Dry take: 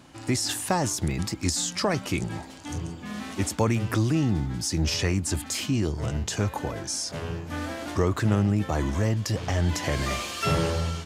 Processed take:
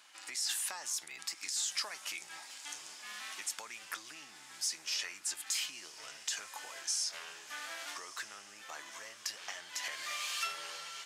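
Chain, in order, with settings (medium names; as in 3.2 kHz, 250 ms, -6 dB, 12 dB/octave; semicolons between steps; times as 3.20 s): flange 0.54 Hz, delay 4.7 ms, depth 3.9 ms, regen +84%; compression, threshold -33 dBFS, peak gain reduction 11 dB; high-pass 1.5 kHz 12 dB/octave; echo that smears into a reverb 1182 ms, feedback 56%, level -15 dB; trim +3 dB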